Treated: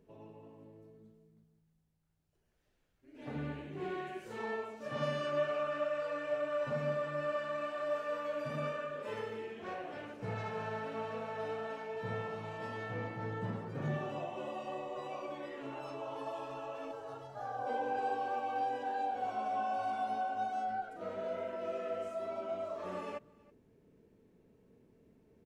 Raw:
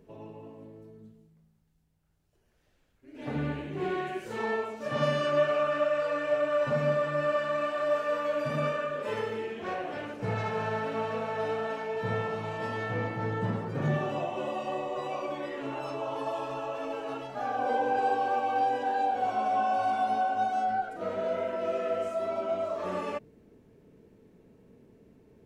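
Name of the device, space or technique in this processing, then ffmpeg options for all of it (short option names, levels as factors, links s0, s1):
ducked delay: -filter_complex "[0:a]asplit=3[s0][s1][s2];[s1]adelay=324,volume=0.447[s3];[s2]apad=whole_len=1136830[s4];[s3][s4]sidechaincompress=threshold=0.00282:ratio=5:attack=16:release=1220[s5];[s0][s5]amix=inputs=2:normalize=0,asettb=1/sr,asplit=3[s6][s7][s8];[s6]atrim=end=16.914[s9];[s7]atrim=start=16.91:end=17.67,asetpts=PTS-STARTPTS,afade=t=in:d=0.004:c=qsin,afade=t=out:st=0.756:d=0.004:c=qsin,equalizer=f=100:t=o:w=0.67:g=12,equalizer=f=250:t=o:w=0.67:g=-11,equalizer=f=2500:t=o:w=0.67:g=-12[s10];[s8]atrim=start=17.666[s11];[s9][s10]acrossfade=d=0.004:c1=hsin:c2=qsin[s12];[s12][s11]acrossfade=d=0.004:c1=qsin:c2=hsin,volume=0.398"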